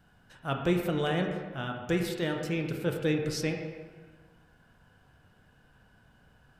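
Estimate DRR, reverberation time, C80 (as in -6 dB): 2.5 dB, 1.4 s, 6.0 dB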